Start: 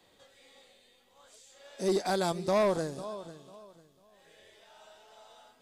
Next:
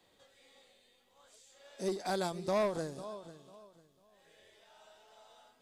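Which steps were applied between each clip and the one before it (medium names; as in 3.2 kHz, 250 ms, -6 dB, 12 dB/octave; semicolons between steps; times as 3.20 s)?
endings held to a fixed fall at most 130 dB/s; trim -4.5 dB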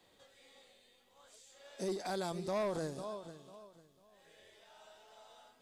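peak limiter -31 dBFS, peak gain reduction 5.5 dB; trim +1 dB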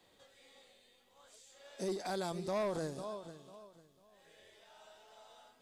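no audible change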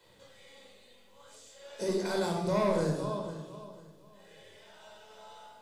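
simulated room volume 2200 m³, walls furnished, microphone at 4.9 m; trim +2 dB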